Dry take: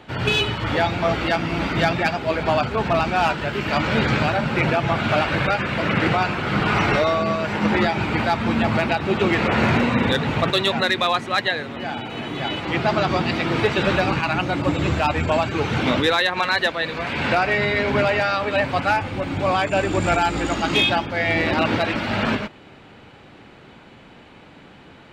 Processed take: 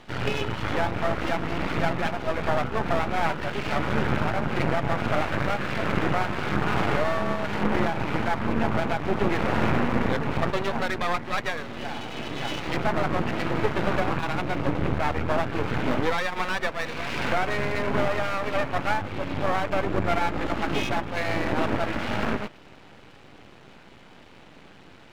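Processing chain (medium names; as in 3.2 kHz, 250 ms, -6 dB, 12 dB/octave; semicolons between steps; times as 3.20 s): low-pass that closes with the level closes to 1.7 kHz, closed at -17.5 dBFS; half-wave rectifier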